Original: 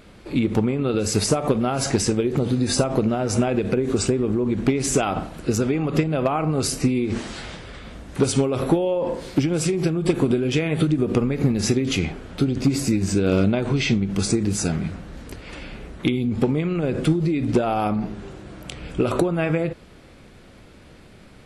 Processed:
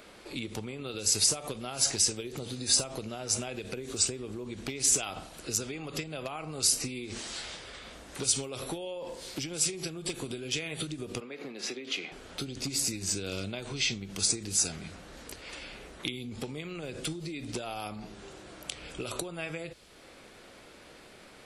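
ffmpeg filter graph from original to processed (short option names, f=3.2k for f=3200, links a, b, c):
-filter_complex "[0:a]asettb=1/sr,asplit=3[a][b][c];[a]atrim=end=11.204[d];[b]atrim=start=11.2:end=12.12,asetpts=PTS-STARTPTS,afade=t=in:d=0.004:c=qsin,afade=t=out:st=0.916:d=0.004:c=qsin,highpass=f=130:w=0.5412,highpass=f=130:w=1.3066,acrossover=split=250 3900:gain=0.1 1 0.126[e][f][g];[e][f][g]amix=inputs=3:normalize=0,bandreject=f=840:w=28[h];[c]atrim=start=12.116[i];[d][h]acrossfade=d=0.004:c1=hsin:c2=qsin[j];[j][i]acrossfade=d=0.004:c1=qsin:c2=hsin,bass=f=250:g=-15,treble=f=4k:g=2,acrossover=split=130|3000[k][l][m];[l]acompressor=threshold=-50dB:ratio=2[n];[k][n][m]amix=inputs=3:normalize=0"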